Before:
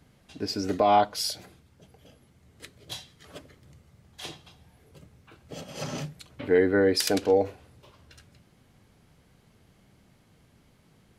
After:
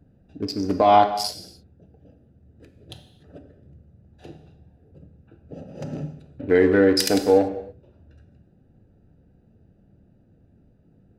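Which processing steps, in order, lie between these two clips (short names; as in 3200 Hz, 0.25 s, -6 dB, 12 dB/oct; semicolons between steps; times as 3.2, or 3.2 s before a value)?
Wiener smoothing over 41 samples; non-linear reverb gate 0.32 s falling, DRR 7 dB; gain +4.5 dB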